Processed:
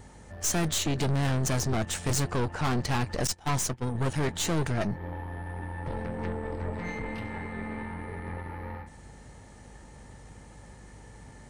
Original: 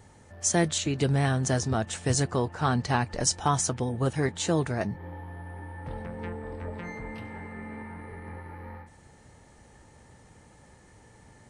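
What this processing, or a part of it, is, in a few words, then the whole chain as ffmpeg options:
valve amplifier with mains hum: -filter_complex "[0:a]aeval=exprs='(tanh(35.5*val(0)+0.6)-tanh(0.6))/35.5':c=same,aeval=exprs='val(0)+0.00141*(sin(2*PI*50*n/s)+sin(2*PI*2*50*n/s)/2+sin(2*PI*3*50*n/s)/3+sin(2*PI*4*50*n/s)/4+sin(2*PI*5*50*n/s)/5)':c=same,asettb=1/sr,asplit=3[s0][s1][s2];[s0]atrim=end=3.274[s3];[s1]atrim=start=3.27:end=3.95,asetpts=PTS-STARTPTS,afade=t=in:d=0.004:c=qsin,afade=t=out:st=0.676:d=0.004:c=qsin,agate=range=0.126:threshold=0.0224:ratio=16:detection=peak[s4];[s2]atrim=start=3.946[s5];[s3][s4]acrossfade=d=0.004:c1=hsin:c2=qsin[s6];[s6][s5]acrossfade=d=0.004:c1=qsin:c2=hsin,volume=2.11"

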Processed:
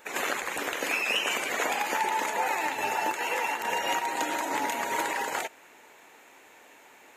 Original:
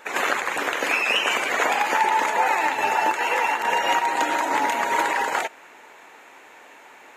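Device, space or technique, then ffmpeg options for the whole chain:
smiley-face EQ: -af "lowshelf=f=140:g=5,equalizer=f=1200:t=o:w=1.7:g=-4,highshelf=f=8400:g=8.5,volume=0.562"

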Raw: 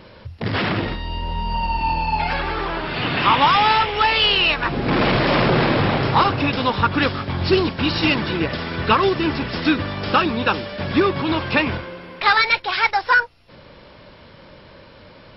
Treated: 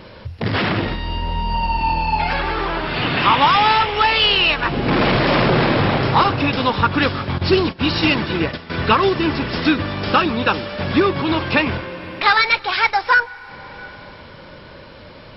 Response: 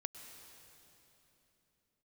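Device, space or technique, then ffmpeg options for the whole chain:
ducked reverb: -filter_complex "[0:a]asplit=3[s0][s1][s2];[1:a]atrim=start_sample=2205[s3];[s1][s3]afir=irnorm=-1:irlink=0[s4];[s2]apad=whole_len=677729[s5];[s4][s5]sidechaincompress=threshold=0.0501:ratio=4:attack=27:release=657,volume=0.944[s6];[s0][s6]amix=inputs=2:normalize=0,asettb=1/sr,asplit=3[s7][s8][s9];[s7]atrim=end=7.384[s10];[s8]atrim=start=7.38:end=8.7,asetpts=PTS-STARTPTS,afade=t=in:d=0.004:c=qsin,afade=t=out:st=1.316:d=0.004:c=qsin,agate=range=0.2:threshold=0.0891:ratio=16:detection=peak[s11];[s9]atrim=start=8.696[s12];[s10][s11]acrossfade=d=0.004:c1=hsin:c2=qsin[s13];[s13][s12]acrossfade=d=0.004:c1=qsin:c2=hsin"

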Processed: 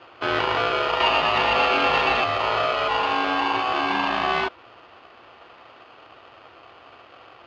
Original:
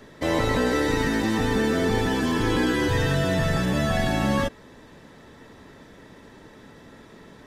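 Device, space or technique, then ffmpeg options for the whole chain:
ring modulator pedal into a guitar cabinet: -filter_complex "[0:a]asettb=1/sr,asplit=3[s0][s1][s2];[s0]atrim=end=1.004[s3];[s1]atrim=start=1:end=2.24,asetpts=PTS-STARTPTS,afade=t=in:d=0.004:c=qsin,afade=t=out:st=1.236:d=0.004:c=qsin,equalizer=f=1900:t=o:w=1.6:g=11.5[s4];[s2]atrim=start=2.236[s5];[s3][s4]acrossfade=d=0.004:c1=hsin:c2=qsin[s6];[s6][s5]acrossfade=d=0.004:c1=qsin:c2=hsin,aeval=exprs='val(0)*sgn(sin(2*PI*940*n/s))':c=same,highpass=89,equalizer=f=110:t=q:w=4:g=4,equalizer=f=170:t=q:w=4:g=-7,equalizer=f=330:t=q:w=4:g=4,lowpass=f=3700:w=0.5412,lowpass=f=3700:w=1.3066"

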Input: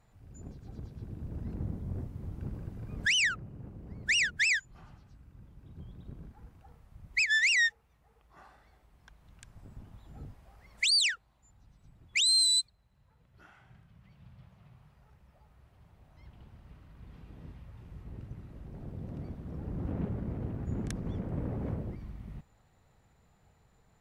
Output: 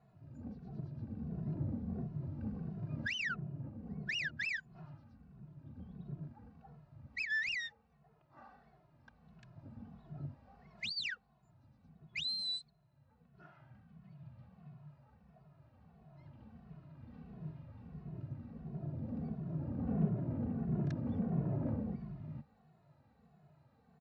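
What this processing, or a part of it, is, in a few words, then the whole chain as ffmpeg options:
barber-pole flanger into a guitar amplifier: -filter_complex "[0:a]asplit=2[s0][s1];[s1]adelay=2.3,afreqshift=-1.5[s2];[s0][s2]amix=inputs=2:normalize=1,asoftclip=type=tanh:threshold=0.0376,highpass=92,equalizer=f=150:t=q:w=4:g=10,equalizer=f=230:t=q:w=4:g=8,equalizer=f=670:t=q:w=4:g=6,equalizer=f=2100:t=q:w=4:g=-6,equalizer=f=3300:t=q:w=4:g=-9,lowpass=f=4300:w=0.5412,lowpass=f=4300:w=1.3066"

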